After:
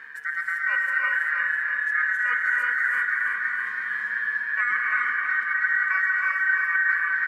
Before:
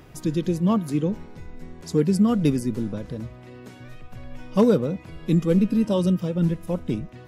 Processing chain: tilt shelf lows +8.5 dB, about 850 Hz; comb 1.5 ms, depth 51%; reverse; compressor, threshold -23 dBFS, peak gain reduction 14.5 dB; reverse; ring modulator 1700 Hz; on a send: feedback echo 0.327 s, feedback 59%, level -5.5 dB; on the sum: non-linear reverb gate 0.42 s rising, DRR -0.5 dB

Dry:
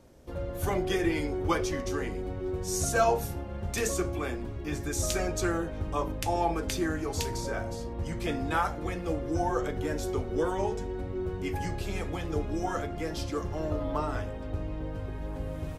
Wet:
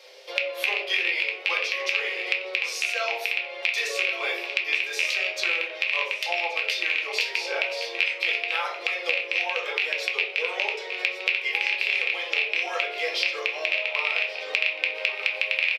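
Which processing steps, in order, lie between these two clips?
rattling part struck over -29 dBFS, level -16 dBFS; steep high-pass 400 Hz 72 dB/oct; echo 1.126 s -16.5 dB; vocal rider within 5 dB 0.5 s; dynamic EQ 6600 Hz, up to -5 dB, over -50 dBFS, Q 0.91; wow and flutter 17 cents; band shelf 3300 Hz +15 dB; reverb, pre-delay 4 ms, DRR -1.5 dB; compressor 2:1, threshold -26 dBFS, peak gain reduction 9 dB

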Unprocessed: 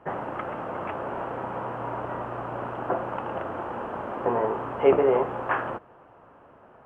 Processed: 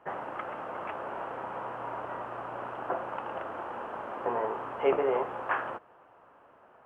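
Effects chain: low shelf 350 Hz -11.5 dB; gain -2.5 dB

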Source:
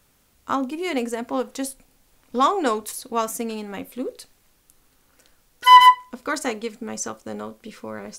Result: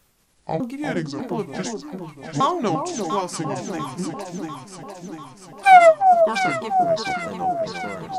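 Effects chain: repeated pitch sweeps -9.5 st, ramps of 0.601 s; echo with dull and thin repeats by turns 0.347 s, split 920 Hz, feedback 77%, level -4 dB

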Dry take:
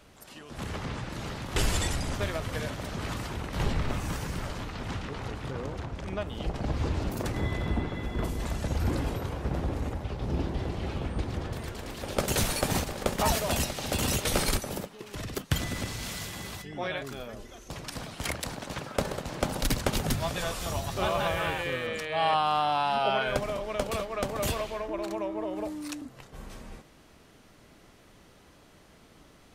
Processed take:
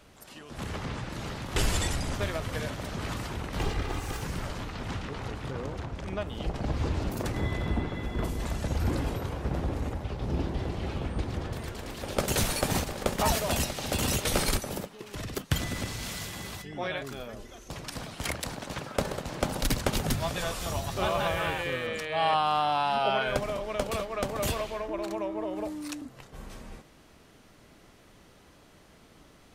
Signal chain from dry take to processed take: 3.58–4.22 minimum comb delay 2.5 ms

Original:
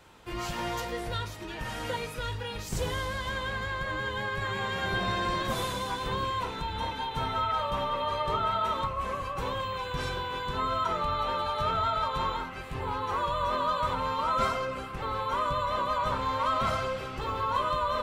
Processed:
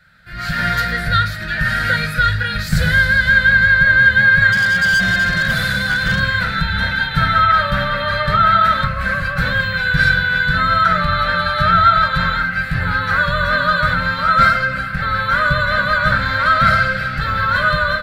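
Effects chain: EQ curve 110 Hz 0 dB, 170 Hz +6 dB, 380 Hz -22 dB, 610 Hz -5 dB, 1000 Hz -20 dB, 1500 Hz +13 dB, 2900 Hz -8 dB, 4300 Hz +4 dB, 6100 Hz -11 dB, 13000 Hz -4 dB; AGC gain up to 15.5 dB; 4.52–6.2 hard clip -13 dBFS, distortion -19 dB; gain +1 dB

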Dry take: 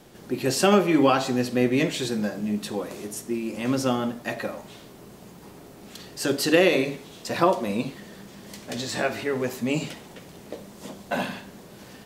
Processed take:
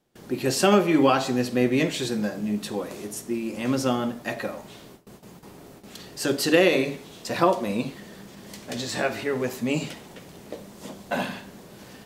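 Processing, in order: gate with hold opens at -36 dBFS

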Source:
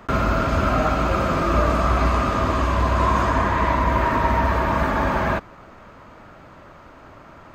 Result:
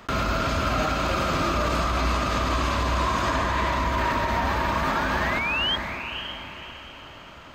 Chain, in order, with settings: painted sound rise, 4.17–5.76, 560–3300 Hz -30 dBFS; bell 3800 Hz +8 dB 1.7 oct; diffused feedback echo 0.547 s, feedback 40%, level -8.5 dB; limiter -12 dBFS, peak gain reduction 7 dB; high shelf 5400 Hz +7.5 dB; gain -3.5 dB

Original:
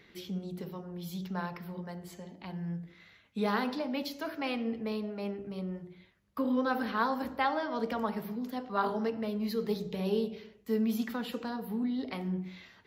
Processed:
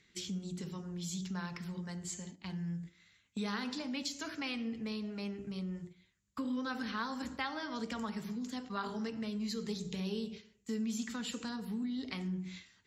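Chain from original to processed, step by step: synth low-pass 7200 Hz, resonance Q 6.9; bell 620 Hz -12 dB 1.7 oct; compressor 2:1, threshold -43 dBFS, peak gain reduction 8 dB; gate -50 dBFS, range -11 dB; gain +4 dB

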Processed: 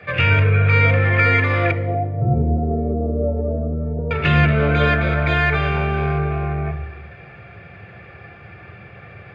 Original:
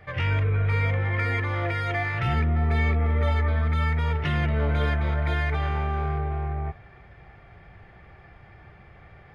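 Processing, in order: 1.71–4.11 Chebyshev low-pass 670 Hz, order 4; reverb RT60 0.95 s, pre-delay 3 ms, DRR 9.5 dB; gain +2 dB

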